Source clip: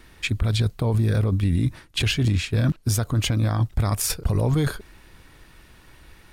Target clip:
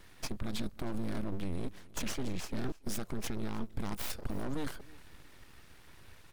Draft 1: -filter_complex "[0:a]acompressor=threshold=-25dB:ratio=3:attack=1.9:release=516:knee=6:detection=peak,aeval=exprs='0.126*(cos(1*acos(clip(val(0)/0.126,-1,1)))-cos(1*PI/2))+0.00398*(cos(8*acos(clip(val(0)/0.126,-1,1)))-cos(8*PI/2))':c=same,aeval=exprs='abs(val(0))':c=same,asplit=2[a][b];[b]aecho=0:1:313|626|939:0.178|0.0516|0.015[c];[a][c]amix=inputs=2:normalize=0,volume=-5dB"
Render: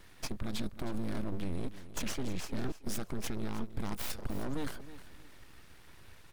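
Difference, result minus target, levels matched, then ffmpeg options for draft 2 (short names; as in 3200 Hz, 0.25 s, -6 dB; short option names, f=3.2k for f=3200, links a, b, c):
echo-to-direct +7.5 dB
-filter_complex "[0:a]acompressor=threshold=-25dB:ratio=3:attack=1.9:release=516:knee=6:detection=peak,aeval=exprs='0.126*(cos(1*acos(clip(val(0)/0.126,-1,1)))-cos(1*PI/2))+0.00398*(cos(8*acos(clip(val(0)/0.126,-1,1)))-cos(8*PI/2))':c=same,aeval=exprs='abs(val(0))':c=same,asplit=2[a][b];[b]aecho=0:1:313|626:0.075|0.0217[c];[a][c]amix=inputs=2:normalize=0,volume=-5dB"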